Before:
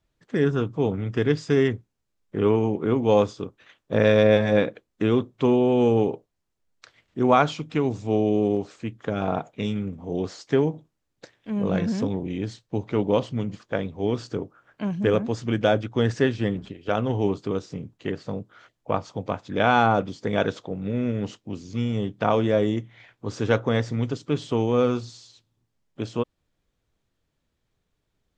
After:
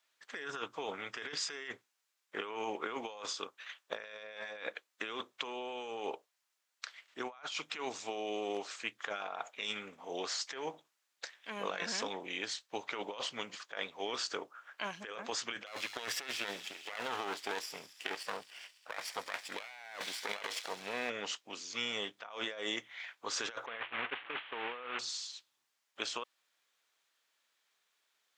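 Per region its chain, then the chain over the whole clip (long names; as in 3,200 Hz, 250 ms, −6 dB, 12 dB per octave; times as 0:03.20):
0:15.66–0:21.10: lower of the sound and its delayed copy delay 0.38 ms + delay with a high-pass on its return 68 ms, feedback 82%, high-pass 4,200 Hz, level −13 dB
0:23.66–0:24.99: linear delta modulator 16 kbit/s, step −25.5 dBFS + downward expander −22 dBFS
whole clip: high-pass filter 1,200 Hz 12 dB per octave; compressor whose output falls as the input rises −42 dBFS, ratio −1; level +1 dB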